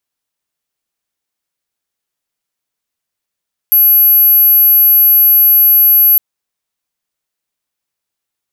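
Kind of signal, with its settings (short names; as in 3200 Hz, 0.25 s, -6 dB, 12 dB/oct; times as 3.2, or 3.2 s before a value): tone sine 11700 Hz -4.5 dBFS 2.46 s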